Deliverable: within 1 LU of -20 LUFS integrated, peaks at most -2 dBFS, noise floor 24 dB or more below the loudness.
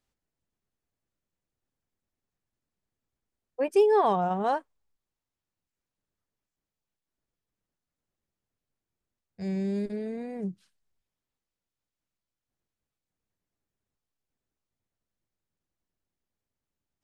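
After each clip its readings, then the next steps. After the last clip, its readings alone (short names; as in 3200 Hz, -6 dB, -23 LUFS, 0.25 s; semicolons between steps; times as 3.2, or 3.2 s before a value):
loudness -27.5 LUFS; peak -12.5 dBFS; loudness target -20.0 LUFS
-> gain +7.5 dB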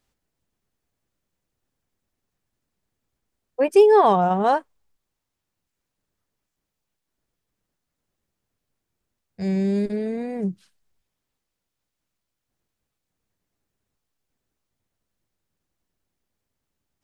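loudness -20.0 LUFS; peak -5.0 dBFS; noise floor -82 dBFS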